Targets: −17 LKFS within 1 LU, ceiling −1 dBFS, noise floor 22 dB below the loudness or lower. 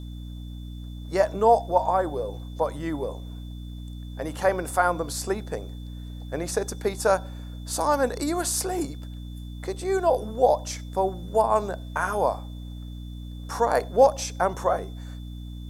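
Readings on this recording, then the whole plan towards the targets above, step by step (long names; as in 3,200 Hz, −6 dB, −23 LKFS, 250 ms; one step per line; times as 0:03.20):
mains hum 60 Hz; hum harmonics up to 300 Hz; level of the hum −34 dBFS; interfering tone 3,500 Hz; level of the tone −53 dBFS; integrated loudness −25.5 LKFS; sample peak −5.5 dBFS; target loudness −17.0 LKFS
→ mains-hum notches 60/120/180/240/300 Hz
notch filter 3,500 Hz, Q 30
level +8.5 dB
brickwall limiter −1 dBFS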